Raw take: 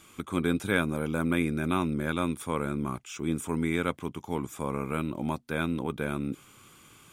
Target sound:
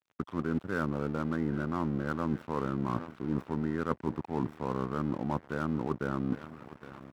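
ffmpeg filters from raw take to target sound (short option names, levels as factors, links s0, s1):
-filter_complex "[0:a]asuperstop=centerf=4900:order=20:qfactor=0.55,highshelf=f=6900:g=-6.5,aecho=1:1:814|1628|2442|3256:0.106|0.0551|0.0286|0.0149,acrossover=split=3900[s0][s1];[s1]acrusher=samples=19:mix=1:aa=0.000001[s2];[s0][s2]amix=inputs=2:normalize=0,asetrate=41625,aresample=44100,atempo=1.05946,areverse,acompressor=threshold=0.0224:ratio=12,areverse,aeval=exprs='sgn(val(0))*max(abs(val(0))-0.00282,0)':c=same,highpass=80,volume=2.37"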